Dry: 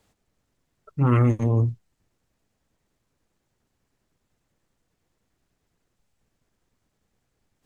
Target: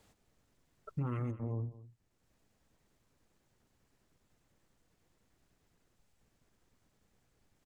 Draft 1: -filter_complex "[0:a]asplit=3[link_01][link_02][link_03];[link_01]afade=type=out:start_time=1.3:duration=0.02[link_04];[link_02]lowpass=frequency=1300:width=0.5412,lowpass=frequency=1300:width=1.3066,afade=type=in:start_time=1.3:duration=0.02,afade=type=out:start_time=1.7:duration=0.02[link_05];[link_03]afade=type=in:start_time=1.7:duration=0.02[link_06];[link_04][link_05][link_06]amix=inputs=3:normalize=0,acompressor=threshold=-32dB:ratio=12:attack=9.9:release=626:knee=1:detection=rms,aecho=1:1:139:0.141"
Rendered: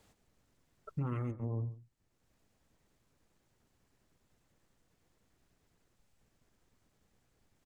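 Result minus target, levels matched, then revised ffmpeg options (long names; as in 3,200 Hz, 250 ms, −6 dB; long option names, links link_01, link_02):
echo 73 ms early
-filter_complex "[0:a]asplit=3[link_01][link_02][link_03];[link_01]afade=type=out:start_time=1.3:duration=0.02[link_04];[link_02]lowpass=frequency=1300:width=0.5412,lowpass=frequency=1300:width=1.3066,afade=type=in:start_time=1.3:duration=0.02,afade=type=out:start_time=1.7:duration=0.02[link_05];[link_03]afade=type=in:start_time=1.7:duration=0.02[link_06];[link_04][link_05][link_06]amix=inputs=3:normalize=0,acompressor=threshold=-32dB:ratio=12:attack=9.9:release=626:knee=1:detection=rms,aecho=1:1:212:0.141"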